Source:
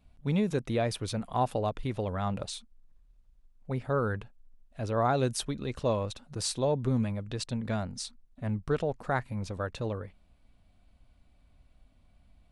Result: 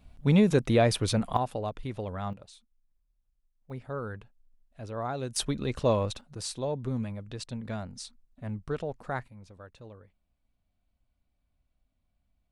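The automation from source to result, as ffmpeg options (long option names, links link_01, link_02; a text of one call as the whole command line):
ffmpeg -i in.wav -af "asetnsamples=nb_out_samples=441:pad=0,asendcmd='1.37 volume volume -3dB;2.33 volume volume -14dB;3.7 volume volume -7dB;5.36 volume volume 3.5dB;6.21 volume volume -4dB;9.28 volume volume -14.5dB',volume=6.5dB" out.wav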